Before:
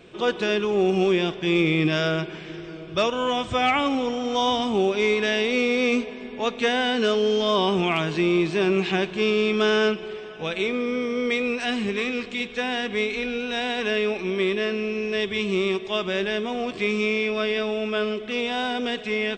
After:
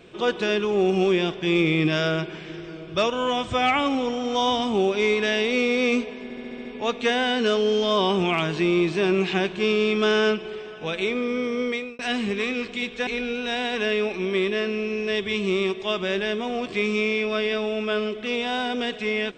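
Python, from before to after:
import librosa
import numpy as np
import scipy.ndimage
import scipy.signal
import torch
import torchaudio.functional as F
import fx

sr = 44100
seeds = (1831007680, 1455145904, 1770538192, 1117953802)

y = fx.edit(x, sr, fx.stutter(start_s=6.23, slice_s=0.07, count=7),
    fx.fade_out_span(start_s=11.2, length_s=0.37),
    fx.cut(start_s=12.65, length_s=0.47), tone=tone)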